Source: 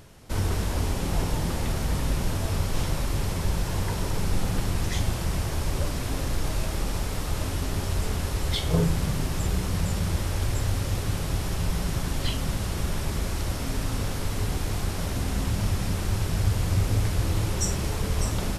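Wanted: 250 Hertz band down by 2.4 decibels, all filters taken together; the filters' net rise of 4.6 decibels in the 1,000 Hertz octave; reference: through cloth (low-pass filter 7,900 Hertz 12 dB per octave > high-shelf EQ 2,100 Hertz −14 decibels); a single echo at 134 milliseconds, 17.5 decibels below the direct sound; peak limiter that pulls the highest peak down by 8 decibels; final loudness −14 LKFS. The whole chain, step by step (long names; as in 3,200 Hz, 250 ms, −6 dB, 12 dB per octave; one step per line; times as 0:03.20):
parametric band 250 Hz −4 dB
parametric band 1,000 Hz +9 dB
brickwall limiter −18.5 dBFS
low-pass filter 7,900 Hz 12 dB per octave
high-shelf EQ 2,100 Hz −14 dB
single-tap delay 134 ms −17.5 dB
level +17 dB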